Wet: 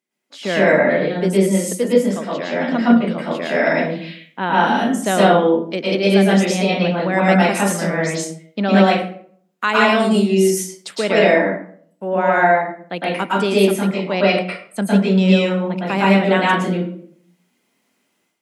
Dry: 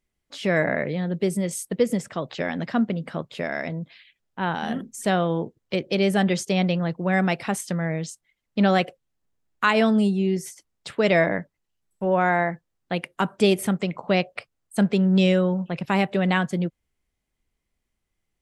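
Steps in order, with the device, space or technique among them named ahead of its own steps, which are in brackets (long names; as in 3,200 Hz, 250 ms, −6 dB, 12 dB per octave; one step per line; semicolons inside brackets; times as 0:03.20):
0:10.00–0:10.96: bass and treble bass −2 dB, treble +8 dB
far laptop microphone (convolution reverb RT60 0.55 s, pre-delay 105 ms, DRR −6.5 dB; high-pass filter 190 Hz 24 dB per octave; automatic gain control gain up to 11.5 dB)
level −1 dB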